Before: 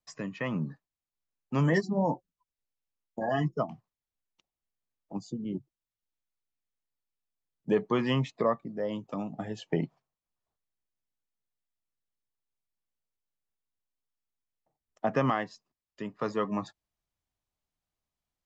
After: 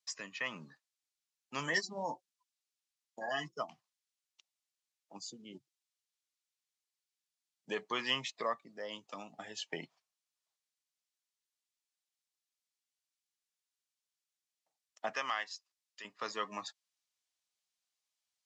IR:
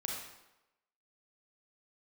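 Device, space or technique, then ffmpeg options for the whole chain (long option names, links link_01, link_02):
piezo pickup straight into a mixer: -filter_complex "[0:a]asettb=1/sr,asplit=3[link_01][link_02][link_03];[link_01]atrim=end=15.134[link_04];[link_02]atrim=start=15.13:end=16.05,asetpts=PTS-STARTPTS,afade=type=in:duration=0.004:curve=qsin,afade=type=out:start_time=0.916:duration=0.004:curve=qsin,highpass=frequency=860:poles=1[link_05];[link_03]atrim=start=16.046[link_06];[link_04][link_05]acrossfade=duration=0.004:curve1=hsin:curve2=qsin[link_07];[link_07][link_06]acrossfade=duration=0.004:curve1=qsin:curve2=hsin,lowpass=6100,aderivative,volume=11.5dB"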